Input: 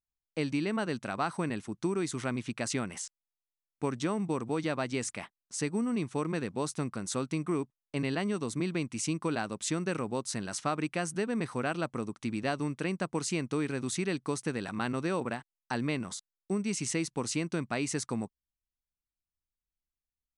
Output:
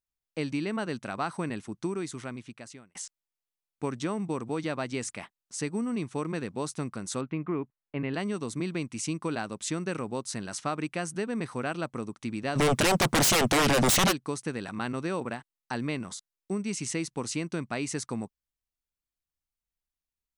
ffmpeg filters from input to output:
-filter_complex "[0:a]asettb=1/sr,asplit=3[a][b][c];[a]atrim=end=7.214[d];[b]atrim=start=7.21:end=8.14,asetpts=PTS-STARTPTS,afade=t=in:d=0.004:c=qsin,afade=t=out:st=0.926:d=0.004:c=qsin,lowpass=f=2.7k:w=0.5412,lowpass=f=2.7k:w=1.3066[e];[c]atrim=start=8.136[f];[d][e]acrossfade=d=0.004:c1=hsin:c2=qsin[g];[g][f]acrossfade=d=0.004:c1=qsin:c2=hsin,asplit=3[h][i][j];[h]afade=t=out:st=12.55:d=0.02[k];[i]aeval=exprs='0.112*sin(PI/2*7.08*val(0)/0.112)':c=same,afade=t=in:st=12.55:d=0.02,afade=t=out:st=14.11:d=0.02[l];[j]afade=t=in:st=14.11:d=0.02[m];[k][l][m]amix=inputs=3:normalize=0,asplit=2[n][o];[n]atrim=end=2.95,asetpts=PTS-STARTPTS,afade=t=out:st=1.76:d=1.19[p];[o]atrim=start=2.95,asetpts=PTS-STARTPTS,afade=t=in:d=0.004:c=hsin[q];[p][q]concat=n=2:v=0:a=1"

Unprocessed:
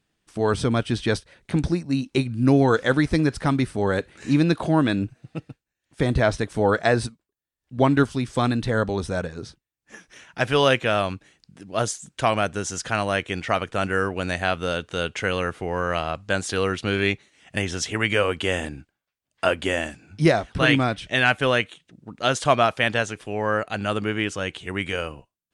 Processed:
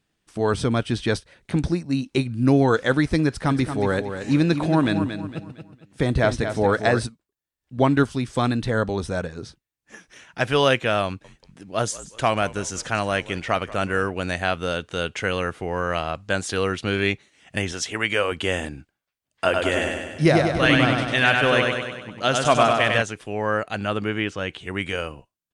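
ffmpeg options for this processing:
-filter_complex "[0:a]asplit=3[a][b][c];[a]afade=t=out:st=3.49:d=0.02[d];[b]aecho=1:1:229|458|687|916:0.376|0.132|0.046|0.0161,afade=t=in:st=3.49:d=0.02,afade=t=out:st=7.03:d=0.02[e];[c]afade=t=in:st=7.03:d=0.02[f];[d][e][f]amix=inputs=3:normalize=0,asettb=1/sr,asplit=3[g][h][i];[g]atrim=end=11.064[j];[h]atrim=start=11.06:end=14.1,asetpts=PTS-STARTPTS,afade=t=in:d=0.004:c=qsin,afade=t=out:st=3.036:d=0.004:c=qsin,asplit=4[k][l][m][n];[l]adelay=183,afreqshift=-63,volume=-18dB[o];[m]adelay=366,afreqshift=-126,volume=-25.5dB[p];[n]adelay=549,afreqshift=-189,volume=-33.1dB[q];[k][o][p][q]amix=inputs=4:normalize=0,atrim=end_sample=134064[r];[i]atrim=start=14.096[s];[j][r]acrossfade=d=0.004:c1=hsin:c2=qsin[t];[t][s]acrossfade=d=0.004:c1=qsin:c2=hsin,asettb=1/sr,asplit=3[u][v][w];[u]atrim=end=17.724[x];[v]atrim=start=17.72:end=18.32,asetpts=PTS-STARTPTS,afade=t=in:d=0.004:c=qsin,afade=t=out:st=0.596:d=0.004:c=qsin,lowshelf=f=230:g=-8.5[y];[w]atrim=start=18.316[z];[x][y]acrossfade=d=0.004:c1=hsin:c2=qsin[aa];[aa][z]acrossfade=d=0.004:c1=qsin:c2=hsin,asettb=1/sr,asplit=3[ab][ac][ad];[ab]atrim=end=19.444[ae];[ac]atrim=start=19.44:end=23.02,asetpts=PTS-STARTPTS,afade=t=in:d=0.004:c=qsin,afade=t=out:st=3.576:d=0.004:c=qsin,aecho=1:1:98|196|294|392|490|588|686|784:0.668|0.394|0.233|0.137|0.081|0.0478|0.0282|0.0166,atrim=end_sample=157878[af];[ad]atrim=start=23.016[ag];[ae][af]acrossfade=d=0.004:c1=hsin:c2=qsin[ah];[ah][ag]acrossfade=d=0.004:c1=qsin:c2=hsin,asettb=1/sr,asplit=3[ai][aj][ak];[ai]atrim=end=23.774[al];[aj]atrim=start=23.77:end=24.71,asetpts=PTS-STARTPTS,afade=t=in:d=0.004:c=qsin,afade=t=out:st=0.936:d=0.004:c=qsin,acrossover=split=4600[am][an];[an]acompressor=threshold=-52dB:ratio=4:attack=1:release=60[ao];[am][ao]amix=inputs=2:normalize=0[ap];[ak]atrim=start=24.706[aq];[al][ap]acrossfade=d=0.004:c1=hsin:c2=qsin[ar];[ar][aq]acrossfade=d=0.004:c1=qsin:c2=hsin"

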